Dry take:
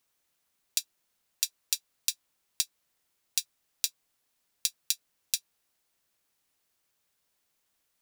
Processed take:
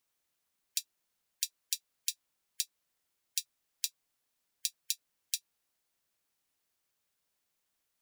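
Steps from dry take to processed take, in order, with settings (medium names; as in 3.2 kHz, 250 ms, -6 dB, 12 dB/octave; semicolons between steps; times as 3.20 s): spectral gate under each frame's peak -25 dB strong; trim -5 dB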